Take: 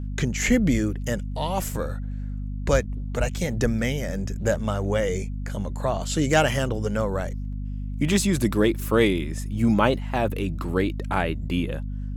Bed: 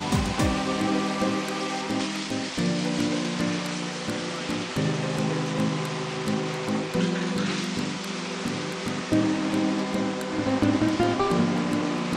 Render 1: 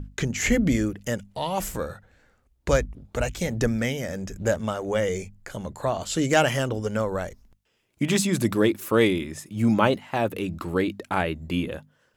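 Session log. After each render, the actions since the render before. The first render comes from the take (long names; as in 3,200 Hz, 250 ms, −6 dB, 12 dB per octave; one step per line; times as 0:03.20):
mains-hum notches 50/100/150/200/250 Hz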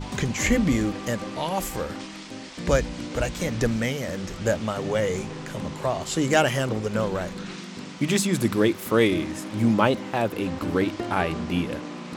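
mix in bed −9 dB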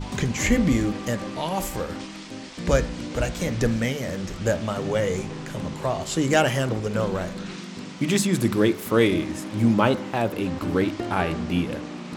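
low-shelf EQ 320 Hz +2.5 dB
hum removal 72.34 Hz, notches 31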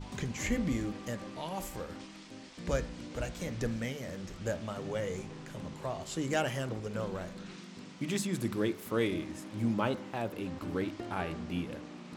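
level −11.5 dB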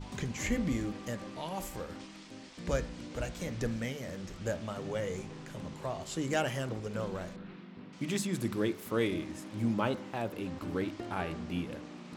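0:07.36–0:07.93: high-frequency loss of the air 390 metres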